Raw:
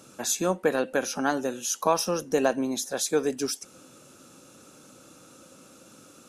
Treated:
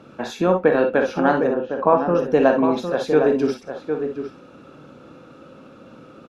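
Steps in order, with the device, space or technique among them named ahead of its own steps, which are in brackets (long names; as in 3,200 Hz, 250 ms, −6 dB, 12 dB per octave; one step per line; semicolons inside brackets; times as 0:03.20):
shout across a valley (high-frequency loss of the air 370 metres; slap from a distant wall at 130 metres, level −7 dB)
0:01.47–0:02.15: low-pass filter 1,500 Hz 12 dB per octave
reverb whose tail is shaped and stops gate 80 ms rising, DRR 5 dB
level +8 dB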